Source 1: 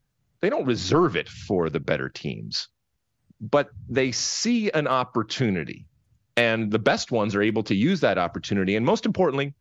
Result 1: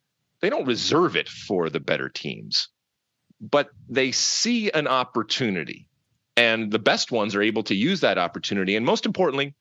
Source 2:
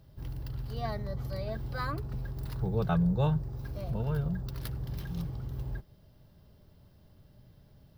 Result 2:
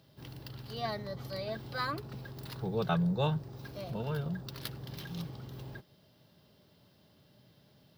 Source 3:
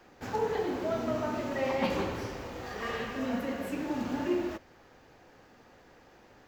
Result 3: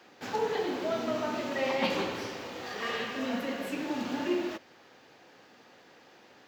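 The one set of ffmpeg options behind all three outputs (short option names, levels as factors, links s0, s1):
-af "highpass=170,equalizer=f=3600:t=o:w=1.5:g=7"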